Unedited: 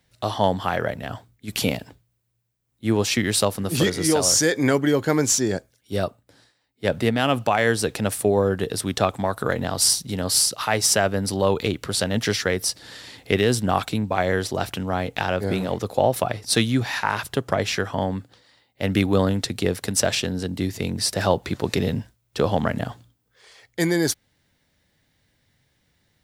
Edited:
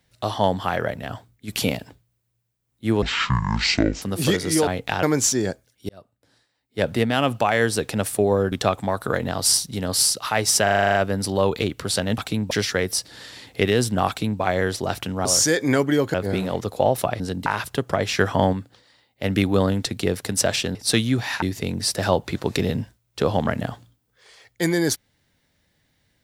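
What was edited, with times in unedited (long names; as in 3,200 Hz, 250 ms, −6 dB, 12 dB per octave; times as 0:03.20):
0:03.02–0:03.55: play speed 53%
0:04.20–0:05.09: swap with 0:14.96–0:15.32
0:05.95–0:06.87: fade in
0:08.58–0:08.88: remove
0:10.99: stutter 0.04 s, 9 plays
0:13.79–0:14.12: duplicate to 0:12.22
0:16.38–0:17.05: swap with 0:20.34–0:20.60
0:17.78–0:18.12: clip gain +5.5 dB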